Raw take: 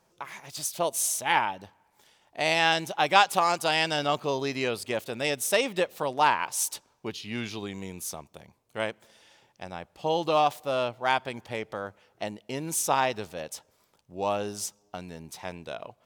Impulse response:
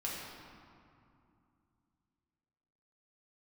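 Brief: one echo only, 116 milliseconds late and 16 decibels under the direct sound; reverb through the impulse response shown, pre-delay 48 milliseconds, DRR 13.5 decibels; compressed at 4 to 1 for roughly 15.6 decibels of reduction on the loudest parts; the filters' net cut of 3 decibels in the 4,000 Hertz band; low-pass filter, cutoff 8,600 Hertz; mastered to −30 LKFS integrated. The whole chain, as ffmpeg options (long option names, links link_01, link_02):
-filter_complex "[0:a]lowpass=8600,equalizer=frequency=4000:width_type=o:gain=-4,acompressor=threshold=-34dB:ratio=4,aecho=1:1:116:0.158,asplit=2[link_01][link_02];[1:a]atrim=start_sample=2205,adelay=48[link_03];[link_02][link_03]afir=irnorm=-1:irlink=0,volume=-16.5dB[link_04];[link_01][link_04]amix=inputs=2:normalize=0,volume=8dB"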